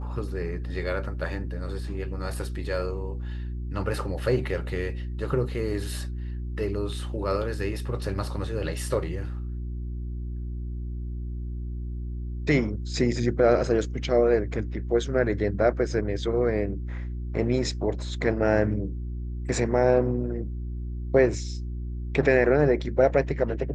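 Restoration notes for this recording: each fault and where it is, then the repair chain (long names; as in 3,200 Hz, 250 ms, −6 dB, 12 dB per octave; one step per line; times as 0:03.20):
mains hum 60 Hz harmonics 6 −32 dBFS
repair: hum removal 60 Hz, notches 6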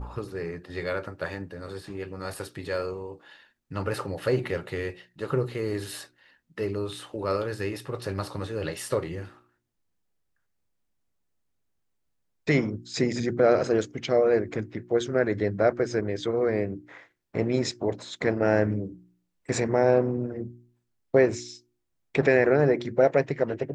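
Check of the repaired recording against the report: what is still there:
none of them is left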